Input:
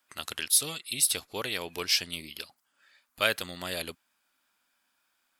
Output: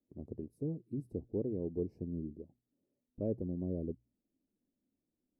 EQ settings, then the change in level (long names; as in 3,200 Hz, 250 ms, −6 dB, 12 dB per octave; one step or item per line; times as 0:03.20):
inverse Chebyshev low-pass filter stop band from 1,300 Hz, stop band 60 dB
mains-hum notches 60/120 Hz
+7.0 dB